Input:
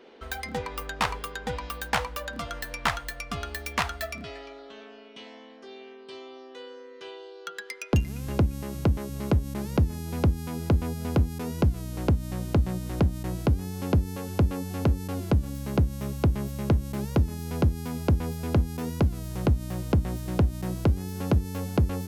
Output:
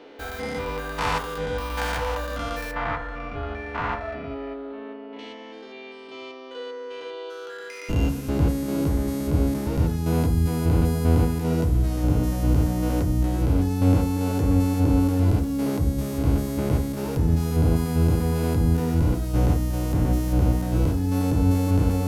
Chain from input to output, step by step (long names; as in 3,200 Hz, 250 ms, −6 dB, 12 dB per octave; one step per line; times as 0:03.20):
spectrum averaged block by block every 200 ms
0:02.71–0:05.19: low-pass filter 1,800 Hz 12 dB per octave
feedback delay network reverb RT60 0.42 s, low-frequency decay 0.95×, high-frequency decay 0.4×, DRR 2.5 dB
level +5.5 dB